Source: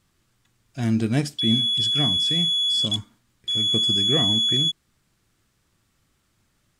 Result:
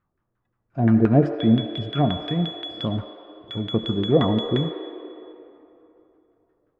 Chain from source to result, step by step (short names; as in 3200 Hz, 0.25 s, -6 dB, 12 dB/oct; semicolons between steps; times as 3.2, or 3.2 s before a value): spectral noise reduction 13 dB; LFO low-pass saw down 5.7 Hz 430–1600 Hz; on a send: Chebyshev band-pass 300–6800 Hz, order 5 + reverb RT60 3.1 s, pre-delay 63 ms, DRR 7 dB; on the sum: gain +4 dB